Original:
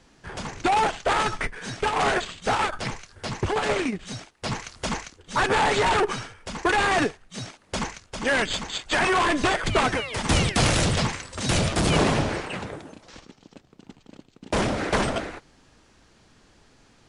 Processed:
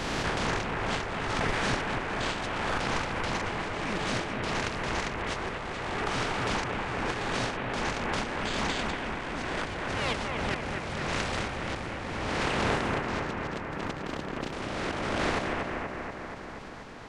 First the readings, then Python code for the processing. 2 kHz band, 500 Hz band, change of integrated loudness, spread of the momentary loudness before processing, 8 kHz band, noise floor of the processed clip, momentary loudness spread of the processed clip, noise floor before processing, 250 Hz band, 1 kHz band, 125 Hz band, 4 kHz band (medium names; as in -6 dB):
-4.5 dB, -6.0 dB, -6.5 dB, 13 LU, -9.5 dB, -40 dBFS, 6 LU, -59 dBFS, -5.0 dB, -6.5 dB, -6.0 dB, -6.0 dB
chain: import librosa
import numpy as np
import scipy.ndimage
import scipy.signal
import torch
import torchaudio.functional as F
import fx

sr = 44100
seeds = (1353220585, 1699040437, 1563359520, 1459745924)

y = fx.spec_flatten(x, sr, power=0.39)
y = y + 10.0 ** (-23.0 / 20.0) * np.pad(y, (int(432 * sr / 1000.0), 0))[:len(y)]
y = fx.over_compress(y, sr, threshold_db=-35.0, ratio=-1.0)
y = fx.spacing_loss(y, sr, db_at_10k=22)
y = fx.echo_bbd(y, sr, ms=239, stages=4096, feedback_pct=73, wet_db=-3.5)
y = fx.pre_swell(y, sr, db_per_s=20.0)
y = F.gain(torch.from_numpy(y), 3.0).numpy()